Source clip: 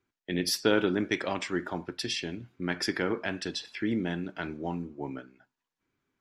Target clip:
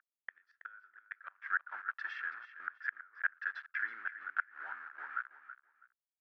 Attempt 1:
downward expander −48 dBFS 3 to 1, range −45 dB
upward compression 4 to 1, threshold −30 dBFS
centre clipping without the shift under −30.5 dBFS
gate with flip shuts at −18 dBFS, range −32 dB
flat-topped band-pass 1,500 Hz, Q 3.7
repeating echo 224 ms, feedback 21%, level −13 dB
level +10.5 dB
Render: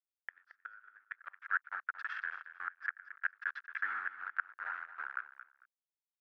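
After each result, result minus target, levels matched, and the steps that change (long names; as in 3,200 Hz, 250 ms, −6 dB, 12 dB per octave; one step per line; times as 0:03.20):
echo 102 ms early; centre clipping without the shift: distortion +8 dB
change: repeating echo 326 ms, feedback 21%, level −13 dB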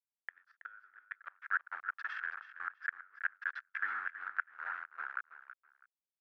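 centre clipping without the shift: distortion +8 dB
change: centre clipping without the shift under −38 dBFS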